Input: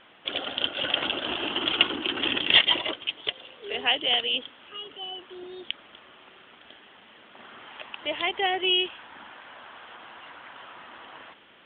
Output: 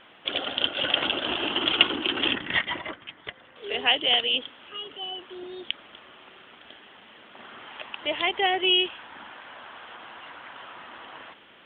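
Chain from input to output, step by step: 2.35–3.56 EQ curve 200 Hz 0 dB, 430 Hz -9 dB, 1900 Hz 0 dB, 2800 Hz -15 dB; gain +2 dB

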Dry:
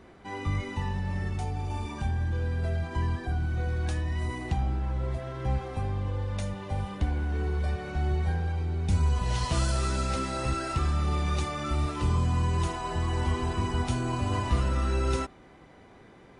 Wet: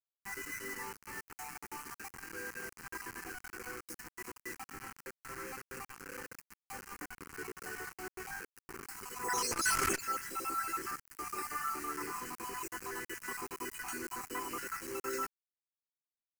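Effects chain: random spectral dropouts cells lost 50%; HPF 380 Hz 24 dB/oct; bell 970 Hz -6.5 dB 0.39 oct; notch 2300 Hz, Q 7.4; 9.23–9.99 sine folder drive 6 dB -> 13 dB, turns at -24.5 dBFS; bit-crush 7-bit; fixed phaser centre 1500 Hz, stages 4; core saturation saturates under 490 Hz; gain +2.5 dB

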